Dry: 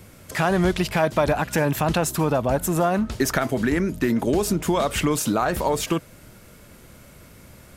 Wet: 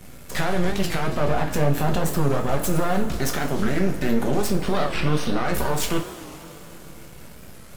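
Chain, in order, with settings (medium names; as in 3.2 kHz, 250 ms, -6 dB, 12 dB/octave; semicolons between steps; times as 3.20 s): 1.07–2.29 s: tilt shelf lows +5 dB; peak limiter -17 dBFS, peak gain reduction 11.5 dB; half-wave rectifier; 4.47–5.45 s: Savitzky-Golay filter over 15 samples; two-slope reverb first 0.3 s, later 3.8 s, from -18 dB, DRR 1.5 dB; warped record 45 rpm, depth 160 cents; trim +3.5 dB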